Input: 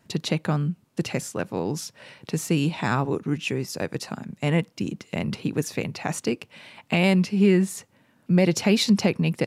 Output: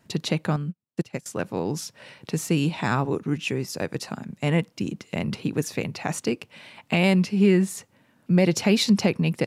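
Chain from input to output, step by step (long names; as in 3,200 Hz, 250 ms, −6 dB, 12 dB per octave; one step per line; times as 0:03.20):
0:00.56–0:01.26: expander for the loud parts 2.5 to 1, over −41 dBFS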